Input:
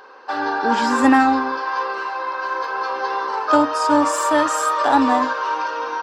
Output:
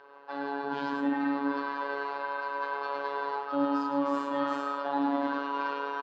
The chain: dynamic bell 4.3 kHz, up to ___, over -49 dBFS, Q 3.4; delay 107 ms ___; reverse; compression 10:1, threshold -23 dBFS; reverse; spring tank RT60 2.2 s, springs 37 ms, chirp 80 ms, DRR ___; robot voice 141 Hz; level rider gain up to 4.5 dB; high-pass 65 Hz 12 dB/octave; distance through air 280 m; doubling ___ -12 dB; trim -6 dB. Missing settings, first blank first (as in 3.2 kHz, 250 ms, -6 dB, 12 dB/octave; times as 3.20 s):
+5 dB, -6 dB, 5 dB, 21 ms